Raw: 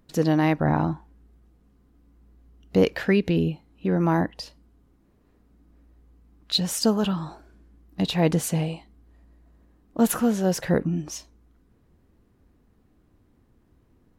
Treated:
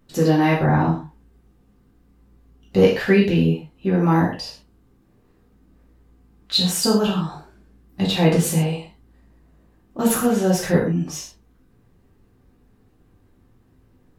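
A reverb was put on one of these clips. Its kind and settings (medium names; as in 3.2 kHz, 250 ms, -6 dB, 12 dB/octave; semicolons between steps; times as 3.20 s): gated-style reverb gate 160 ms falling, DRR -5.5 dB; trim -1.5 dB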